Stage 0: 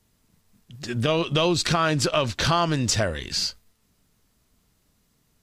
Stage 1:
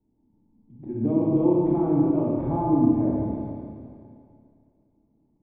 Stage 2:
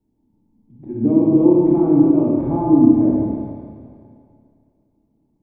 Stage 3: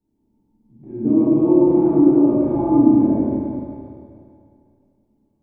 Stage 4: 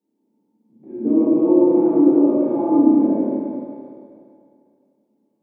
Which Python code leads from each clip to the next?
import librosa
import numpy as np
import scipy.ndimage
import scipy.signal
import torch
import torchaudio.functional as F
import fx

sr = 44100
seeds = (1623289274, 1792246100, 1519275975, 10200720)

y1 = fx.formant_cascade(x, sr, vowel='u')
y1 = fx.rev_schroeder(y1, sr, rt60_s=2.4, comb_ms=28, drr_db=-5.0)
y1 = F.gain(torch.from_numpy(y1), 6.0).numpy()
y2 = fx.dynamic_eq(y1, sr, hz=290.0, q=1.2, threshold_db=-32.0, ratio=4.0, max_db=7)
y2 = F.gain(torch.from_numpy(y2), 2.0).numpy()
y3 = fx.rev_plate(y2, sr, seeds[0], rt60_s=1.6, hf_ratio=0.95, predelay_ms=0, drr_db=-6.0)
y3 = F.gain(torch.from_numpy(y3), -7.0).numpy()
y4 = scipy.signal.sosfilt(scipy.signal.butter(4, 200.0, 'highpass', fs=sr, output='sos'), y3)
y4 = fx.peak_eq(y4, sr, hz=500.0, db=7.5, octaves=0.35)
y4 = F.gain(torch.from_numpy(y4), -1.0).numpy()